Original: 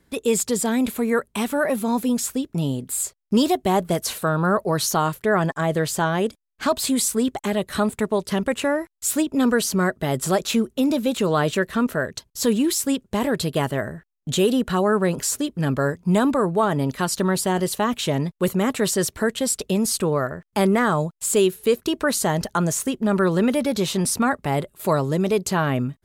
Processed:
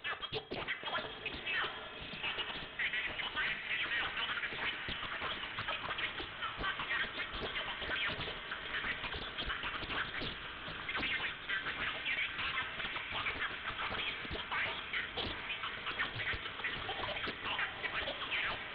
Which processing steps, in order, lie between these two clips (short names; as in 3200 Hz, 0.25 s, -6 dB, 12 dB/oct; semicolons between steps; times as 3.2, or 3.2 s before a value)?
slices in reverse order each 0.194 s, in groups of 4; Bessel high-pass 2200 Hz, order 2; in parallel at +2 dB: level quantiser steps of 21 dB; on the sum: limiter -18 dBFS, peak gain reduction 12.5 dB; soft clip -32 dBFS, distortion -8 dB; wide varispeed 1.39×; diffused feedback echo 0.826 s, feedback 63%, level -7 dB; reverb, pre-delay 3 ms, DRR 6.5 dB; inverted band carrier 3900 Hz; Doppler distortion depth 0.46 ms